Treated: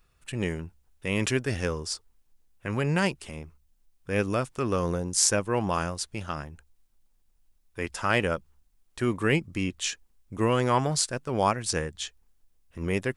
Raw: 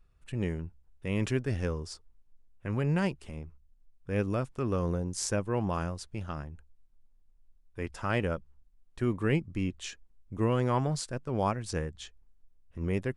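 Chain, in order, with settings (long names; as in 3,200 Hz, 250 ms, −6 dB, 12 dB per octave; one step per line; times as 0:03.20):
spectral tilt +2 dB per octave
level +6.5 dB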